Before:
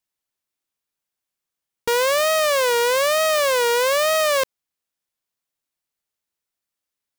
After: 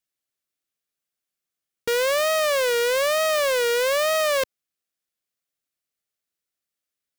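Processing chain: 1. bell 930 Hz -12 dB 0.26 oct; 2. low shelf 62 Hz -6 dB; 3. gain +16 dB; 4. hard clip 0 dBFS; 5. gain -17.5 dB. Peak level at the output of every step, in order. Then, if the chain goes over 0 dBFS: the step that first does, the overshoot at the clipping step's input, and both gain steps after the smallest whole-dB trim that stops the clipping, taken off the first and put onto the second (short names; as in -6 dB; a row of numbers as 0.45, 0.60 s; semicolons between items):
-13.0, -12.5, +3.5, 0.0, -17.5 dBFS; step 3, 3.5 dB; step 3 +12 dB, step 5 -13.5 dB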